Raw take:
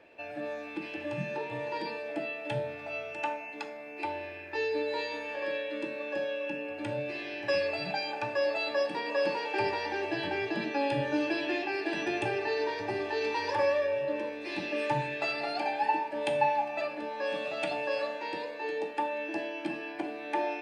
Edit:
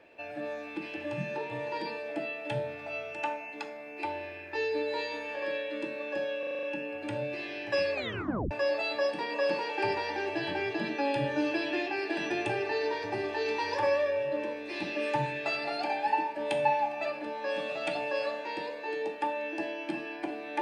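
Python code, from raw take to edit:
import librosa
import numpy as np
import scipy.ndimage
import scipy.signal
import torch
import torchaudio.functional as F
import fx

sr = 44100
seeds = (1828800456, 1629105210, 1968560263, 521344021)

y = fx.edit(x, sr, fx.stutter(start_s=6.39, slice_s=0.04, count=7),
    fx.tape_stop(start_s=7.7, length_s=0.57), tone=tone)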